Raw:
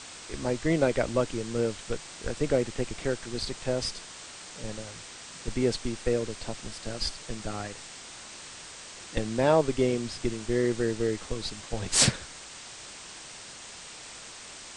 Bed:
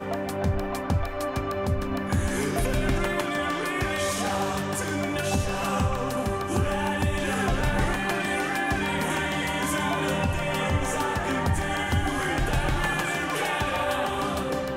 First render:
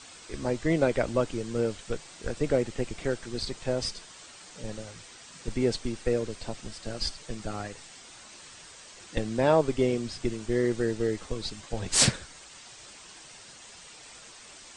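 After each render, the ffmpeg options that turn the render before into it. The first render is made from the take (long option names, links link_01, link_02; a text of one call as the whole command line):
ffmpeg -i in.wav -af "afftdn=noise_reduction=7:noise_floor=-45" out.wav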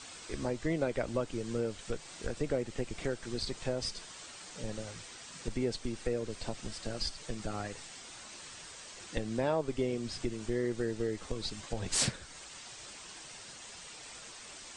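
ffmpeg -i in.wav -af "acompressor=threshold=-34dB:ratio=2" out.wav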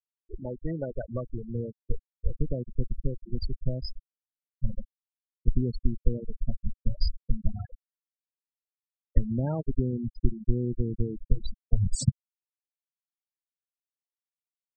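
ffmpeg -i in.wav -af "afftfilt=real='re*gte(hypot(re,im),0.0708)':imag='im*gte(hypot(re,im),0.0708)':win_size=1024:overlap=0.75,asubboost=boost=8.5:cutoff=160" out.wav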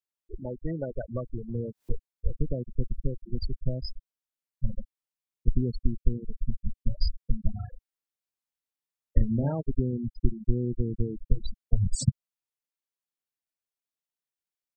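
ffmpeg -i in.wav -filter_complex "[0:a]asplit=3[link_01][link_02][link_03];[link_01]afade=type=out:start_time=1.48:duration=0.02[link_04];[link_02]acompressor=mode=upward:threshold=-29dB:ratio=2.5:attack=3.2:release=140:knee=2.83:detection=peak,afade=type=in:start_time=1.48:duration=0.02,afade=type=out:start_time=1.93:duration=0.02[link_05];[link_03]afade=type=in:start_time=1.93:duration=0.02[link_06];[link_04][link_05][link_06]amix=inputs=3:normalize=0,asettb=1/sr,asplit=3[link_07][link_08][link_09];[link_07]atrim=end=5.844[link_10];[link_08]atrim=start=5.84:end=6.88,asetpts=PTS-STARTPTS,afade=type=in:duration=0.004:curve=qsin,afade=type=out:start_time=1.036:duration=0.004:curve=qsin,asuperstop=centerf=840:order=8:qfactor=0.66[link_11];[link_09]atrim=start=6.876[link_12];[link_10][link_11]acrossfade=duration=0.004:curve1=hsin:curve2=qsin[link_13];[link_13][link_12]acrossfade=duration=0.004:curve1=qsin:curve2=hsin,asplit=3[link_14][link_15][link_16];[link_14]afade=type=out:start_time=7.62:duration=0.02[link_17];[link_15]asplit=2[link_18][link_19];[link_19]adelay=36,volume=-4dB[link_20];[link_18][link_20]amix=inputs=2:normalize=0,afade=type=in:start_time=7.62:duration=0.02,afade=type=out:start_time=9.51:duration=0.02[link_21];[link_16]afade=type=in:start_time=9.51:duration=0.02[link_22];[link_17][link_21][link_22]amix=inputs=3:normalize=0" out.wav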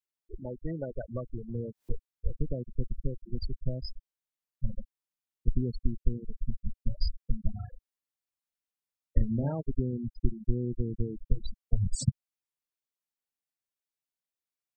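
ffmpeg -i in.wav -af "volume=-3dB" out.wav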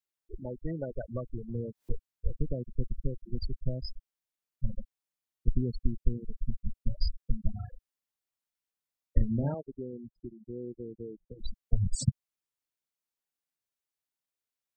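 ffmpeg -i in.wav -filter_complex "[0:a]asettb=1/sr,asplit=3[link_01][link_02][link_03];[link_01]atrim=end=9.544[link_04];[link_02]atrim=start=9.54:end=11.39,asetpts=PTS-STARTPTS,afade=type=in:duration=0.004:curve=qsin,afade=type=out:start_time=1.846:duration=0.004:curve=qsin,bandpass=frequency=550:width_type=q:width=1.4[link_05];[link_03]atrim=start=11.386[link_06];[link_04][link_05]acrossfade=duration=0.004:curve1=hsin:curve2=qsin[link_07];[link_07][link_06]acrossfade=duration=0.004:curve1=qsin:curve2=hsin" out.wav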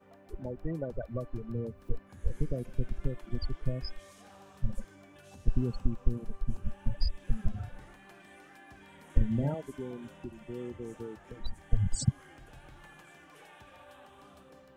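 ffmpeg -i in.wav -i bed.wav -filter_complex "[1:a]volume=-27.5dB[link_01];[0:a][link_01]amix=inputs=2:normalize=0" out.wav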